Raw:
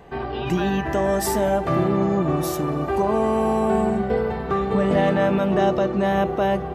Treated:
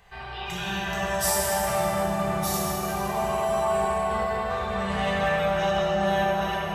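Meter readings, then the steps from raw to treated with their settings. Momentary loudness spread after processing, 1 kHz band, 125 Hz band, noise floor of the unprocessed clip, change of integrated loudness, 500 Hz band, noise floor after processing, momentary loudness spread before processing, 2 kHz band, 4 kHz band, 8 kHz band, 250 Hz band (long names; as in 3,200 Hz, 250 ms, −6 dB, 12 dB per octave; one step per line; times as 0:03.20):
5 LU, −1.5 dB, −7.0 dB, −29 dBFS, −4.0 dB, −5.5 dB, −36 dBFS, 5 LU, +1.5 dB, +4.0 dB, +5.5 dB, −10.0 dB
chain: guitar amp tone stack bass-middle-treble 10-0-10
on a send: bucket-brigade delay 248 ms, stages 2,048, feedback 71%, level −4 dB
on the sum: dense smooth reverb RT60 3.3 s, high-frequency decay 0.75×, DRR −5 dB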